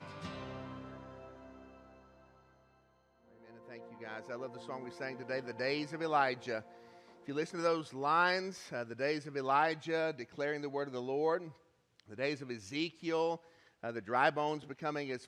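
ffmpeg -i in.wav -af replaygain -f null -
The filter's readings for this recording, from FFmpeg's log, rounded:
track_gain = +15.7 dB
track_peak = 0.126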